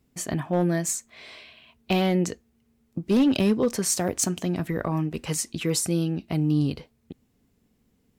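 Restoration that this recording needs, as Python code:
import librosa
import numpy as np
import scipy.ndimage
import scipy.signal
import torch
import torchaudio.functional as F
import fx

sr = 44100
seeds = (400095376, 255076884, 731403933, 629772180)

y = fx.fix_declip(x, sr, threshold_db=-15.0)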